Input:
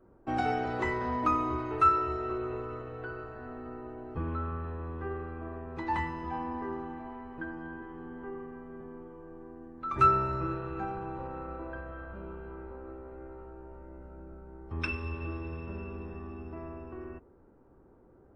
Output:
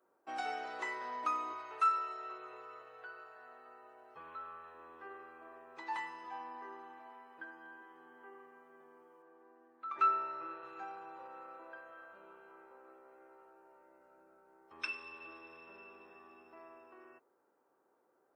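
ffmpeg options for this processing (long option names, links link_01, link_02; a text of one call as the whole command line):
ffmpeg -i in.wav -filter_complex "[0:a]asettb=1/sr,asplit=3[link_01][link_02][link_03];[link_01]atrim=end=1.534[link_04];[link_02]atrim=start=1.53:end=4.75,asetpts=PTS-STARTPTS,afade=type=in:duration=0.004:curve=qsin,afade=type=out:start_time=3.216:duration=0.004:curve=qsin,equalizer=frequency=290:width=2.9:gain=-14[link_05];[link_03]atrim=start=4.746[link_06];[link_04][link_05]acrossfade=duration=0.004:curve1=hsin:curve2=qsin[link_07];[link_07][link_06]acrossfade=duration=0.004:curve1=qsin:curve2=hsin,asettb=1/sr,asplit=3[link_08][link_09][link_10];[link_08]atrim=end=9.224[link_11];[link_09]atrim=start=9.22:end=10.63,asetpts=PTS-STARTPTS,afade=type=in:duration=0.004:curve=qsin,afade=type=out:start_time=1.406:duration=0.004:curve=qsin,highpass=160,lowpass=3100[link_12];[link_10]atrim=start=10.626[link_13];[link_11][link_12]acrossfade=duration=0.004:curve1=hsin:curve2=qsin[link_14];[link_14][link_13]acrossfade=duration=0.004:curve1=qsin:curve2=hsin,highpass=610,highshelf=frequency=3700:gain=10,volume=-7.5dB" out.wav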